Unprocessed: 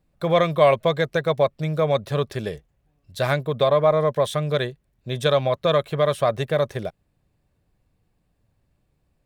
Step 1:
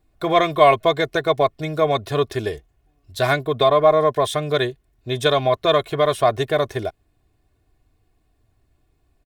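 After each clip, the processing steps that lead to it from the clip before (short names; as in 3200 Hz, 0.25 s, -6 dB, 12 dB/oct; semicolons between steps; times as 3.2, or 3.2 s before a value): comb 2.8 ms, depth 69%; gain +2.5 dB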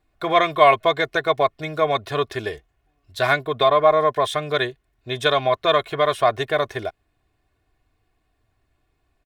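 bell 1700 Hz +8.5 dB 3 oct; gain -6 dB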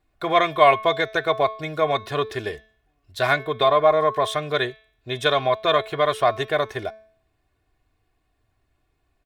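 de-hum 218.3 Hz, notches 28; gain -1 dB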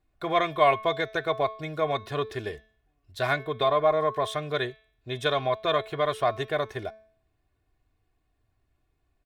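low shelf 330 Hz +4.5 dB; gain -6.5 dB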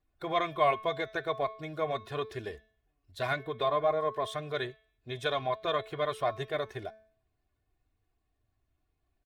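bin magnitudes rounded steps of 15 dB; gain -5 dB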